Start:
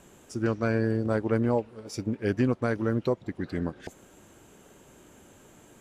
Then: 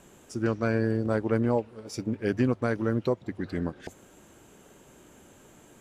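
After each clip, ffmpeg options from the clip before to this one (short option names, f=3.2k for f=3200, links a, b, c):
-af "bandreject=f=50:t=h:w=6,bandreject=f=100:t=h:w=6"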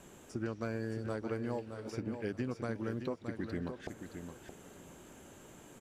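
-filter_complex "[0:a]acrossover=split=1300|2700[a][b][c];[a]acompressor=threshold=-35dB:ratio=4[d];[b]acompressor=threshold=-52dB:ratio=4[e];[c]acompressor=threshold=-57dB:ratio=4[f];[d][e][f]amix=inputs=3:normalize=0,aecho=1:1:619|1238|1857:0.398|0.0836|0.0176,volume=-1dB"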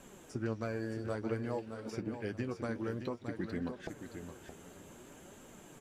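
-af "flanger=delay=3.6:depth=9.2:regen=50:speed=0.55:shape=triangular,volume=4.5dB"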